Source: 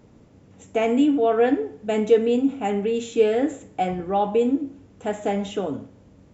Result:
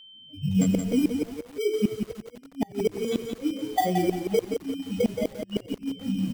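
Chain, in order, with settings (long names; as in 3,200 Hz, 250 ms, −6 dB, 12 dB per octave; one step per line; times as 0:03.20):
expanding power law on the bin magnitudes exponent 3.6
camcorder AGC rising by 78 dB per second
high-pass filter 120 Hz 24 dB per octave
in parallel at −3.5 dB: sample-rate reduction 2,700 Hz, jitter 0%
on the sum: noise reduction from a noise print of the clip's start 29 dB
chorus effect 0.52 Hz, delay 18.5 ms, depth 4.5 ms
steady tone 3,100 Hz −45 dBFS
gate with flip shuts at −11 dBFS, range −33 dB
on a send: echo with shifted repeats 91 ms, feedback 54%, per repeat −89 Hz, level −21.5 dB
on the sum: feedback echo at a low word length 174 ms, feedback 35%, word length 7 bits, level −6 dB
level −1.5 dB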